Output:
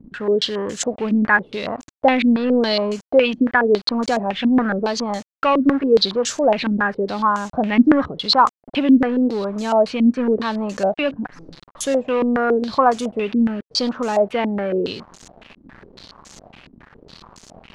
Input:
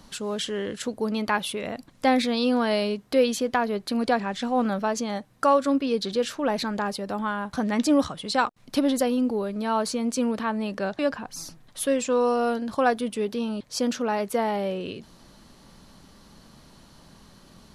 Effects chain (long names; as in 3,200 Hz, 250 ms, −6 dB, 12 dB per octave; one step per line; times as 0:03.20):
in parallel at −3.5 dB: hard clipping −26 dBFS, distortion −6 dB
on the sum: bit reduction 7 bits
low-pass on a step sequencer 7.2 Hz 270–6,800 Hz